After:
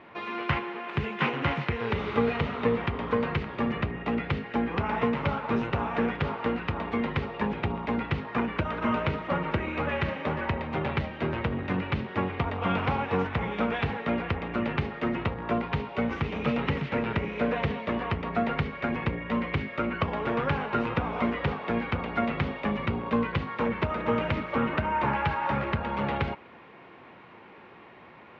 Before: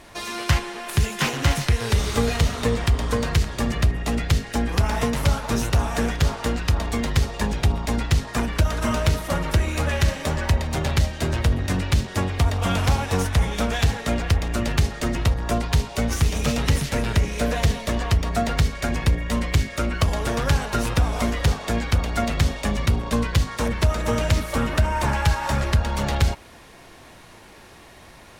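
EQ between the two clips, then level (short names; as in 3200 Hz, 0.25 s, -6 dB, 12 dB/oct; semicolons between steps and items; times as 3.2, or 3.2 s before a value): speaker cabinet 180–2500 Hz, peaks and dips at 290 Hz -3 dB, 650 Hz -6 dB, 1700 Hz -5 dB; 0.0 dB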